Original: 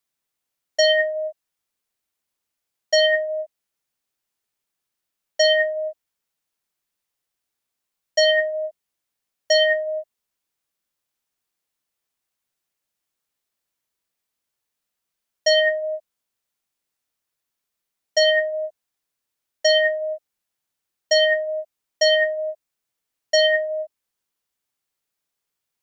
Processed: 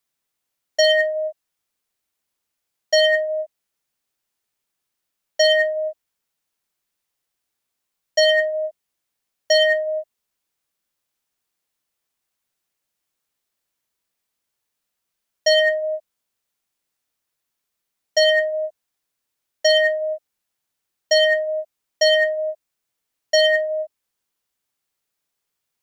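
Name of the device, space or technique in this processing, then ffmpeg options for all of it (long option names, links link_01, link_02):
parallel distortion: -filter_complex "[0:a]asplit=2[link_01][link_02];[link_02]asoftclip=type=hard:threshold=-20.5dB,volume=-11dB[link_03];[link_01][link_03]amix=inputs=2:normalize=0"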